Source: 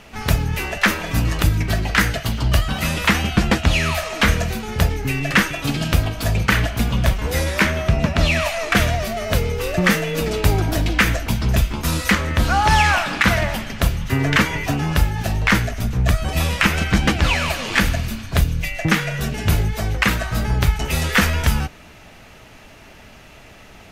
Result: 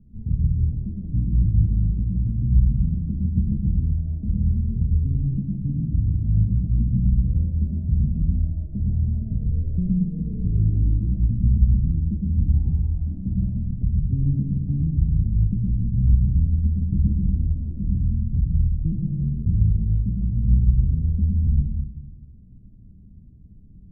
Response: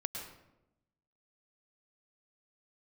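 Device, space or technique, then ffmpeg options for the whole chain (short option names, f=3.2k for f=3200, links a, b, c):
club heard from the street: -filter_complex "[0:a]alimiter=limit=-9dB:level=0:latency=1:release=133,lowpass=f=210:w=0.5412,lowpass=f=210:w=1.3066[a];[1:a]atrim=start_sample=2205[b];[a][b]afir=irnorm=-1:irlink=0"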